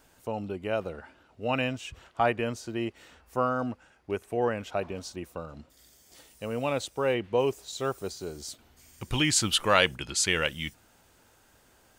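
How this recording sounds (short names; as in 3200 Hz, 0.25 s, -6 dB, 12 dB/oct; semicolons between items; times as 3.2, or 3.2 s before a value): noise floor -62 dBFS; spectral tilt -3.0 dB/oct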